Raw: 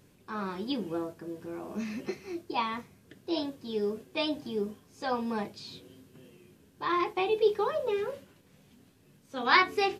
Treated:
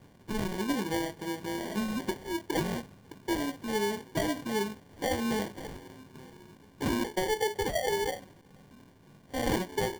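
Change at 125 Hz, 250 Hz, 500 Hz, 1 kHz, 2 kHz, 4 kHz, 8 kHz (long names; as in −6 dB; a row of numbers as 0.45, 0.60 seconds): +8.5 dB, +2.5 dB, −1.0 dB, −4.0 dB, −3.5 dB, −1.5 dB, can't be measured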